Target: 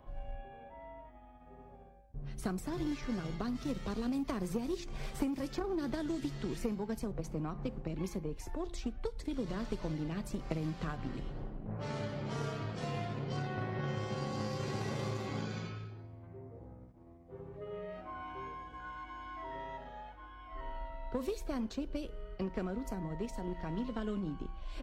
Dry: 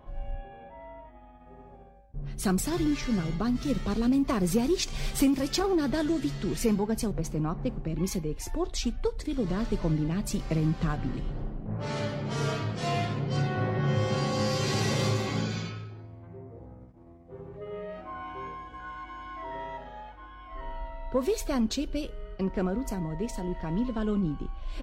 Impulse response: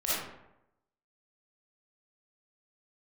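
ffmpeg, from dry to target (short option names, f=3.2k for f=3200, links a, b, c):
-filter_complex "[0:a]bandreject=f=173.1:t=h:w=4,bandreject=f=346.2:t=h:w=4,bandreject=f=519.3:t=h:w=4,bandreject=f=692.4:t=h:w=4,bandreject=f=865.5:t=h:w=4,bandreject=f=1.0386k:t=h:w=4,bandreject=f=1.2117k:t=h:w=4,bandreject=f=1.3848k:t=h:w=4,bandreject=f=1.5579k:t=h:w=4,bandreject=f=1.731k:t=h:w=4,bandreject=f=1.9041k:t=h:w=4,bandreject=f=2.0772k:t=h:w=4,bandreject=f=2.2503k:t=h:w=4,acrossover=split=330|1900[a][b][c];[a]acompressor=threshold=-34dB:ratio=4[d];[b]acompressor=threshold=-37dB:ratio=4[e];[c]acompressor=threshold=-49dB:ratio=4[f];[d][e][f]amix=inputs=3:normalize=0,aeval=exprs='0.106*(cos(1*acos(clip(val(0)/0.106,-1,1)))-cos(1*PI/2))+0.0168*(cos(3*acos(clip(val(0)/0.106,-1,1)))-cos(3*PI/2))':c=same,volume=1dB"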